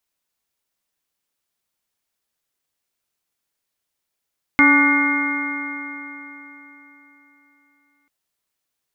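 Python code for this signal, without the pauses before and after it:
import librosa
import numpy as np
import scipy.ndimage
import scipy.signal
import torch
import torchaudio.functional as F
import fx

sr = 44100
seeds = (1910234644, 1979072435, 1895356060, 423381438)

y = fx.additive_stiff(sr, length_s=3.49, hz=283.0, level_db=-14, upper_db=(-19.5, -9.0, -6, -4.5, -14.5, 3.0), decay_s=3.77, stiffness=0.0031)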